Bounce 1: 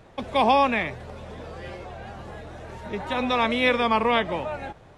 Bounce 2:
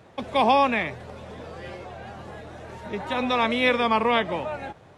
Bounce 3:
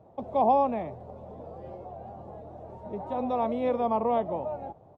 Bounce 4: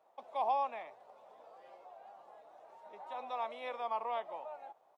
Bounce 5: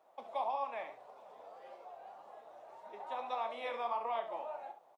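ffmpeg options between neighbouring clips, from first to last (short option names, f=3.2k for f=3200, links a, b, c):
-af "highpass=81"
-af "firequalizer=gain_entry='entry(430,0);entry(700,5);entry(1600,-20)':delay=0.05:min_phase=1,volume=-4.5dB"
-af "highpass=1.3k"
-filter_complex "[0:a]acompressor=threshold=-36dB:ratio=5,flanger=delay=2.4:depth=8.3:regen=52:speed=1.7:shape=triangular,asplit=2[a][b];[b]aecho=0:1:34|68:0.266|0.299[c];[a][c]amix=inputs=2:normalize=0,volume=6.5dB"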